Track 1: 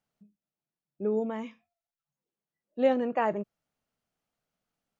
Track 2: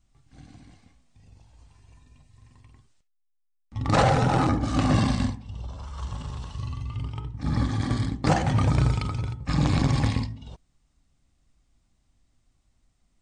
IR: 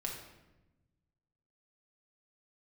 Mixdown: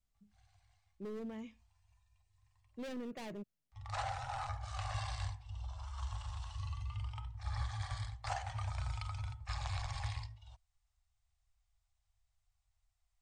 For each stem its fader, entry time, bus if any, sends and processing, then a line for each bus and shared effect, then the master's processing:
-6.0 dB, 0.00 s, no send, hard clip -29.5 dBFS, distortion -5 dB; bell 940 Hz -11 dB 2.4 oct
-11.5 dB, 0.00 s, no send, elliptic band-stop 100–700 Hz, stop band 40 dB; vocal rider within 5 dB 0.5 s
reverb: off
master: dry

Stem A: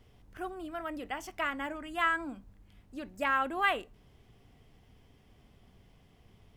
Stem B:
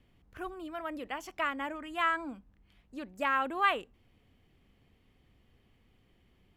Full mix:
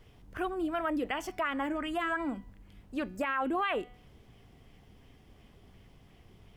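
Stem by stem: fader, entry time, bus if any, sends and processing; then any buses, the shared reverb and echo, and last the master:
+2.5 dB, 0.00 s, no send, de-hum 246.1 Hz, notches 22; compressor 2:1, threshold -37 dBFS, peak gain reduction 8.5 dB
+0.5 dB, 0.00 s, no send, LFO low-pass sine 2.8 Hz 360–3300 Hz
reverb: off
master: limiter -22.5 dBFS, peak gain reduction 12 dB

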